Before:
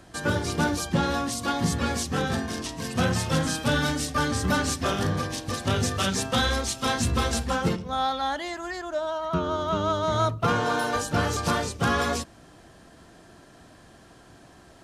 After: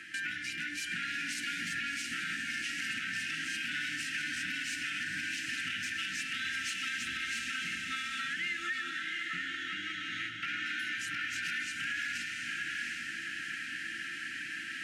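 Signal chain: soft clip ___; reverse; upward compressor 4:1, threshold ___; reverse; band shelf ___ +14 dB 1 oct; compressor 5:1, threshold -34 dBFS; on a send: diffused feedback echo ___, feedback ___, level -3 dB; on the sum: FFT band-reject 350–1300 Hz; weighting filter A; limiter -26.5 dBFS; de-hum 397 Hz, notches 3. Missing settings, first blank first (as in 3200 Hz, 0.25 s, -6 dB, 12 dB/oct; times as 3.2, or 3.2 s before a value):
-21.5 dBFS, -39 dBFS, 2200 Hz, 0.744 s, 46%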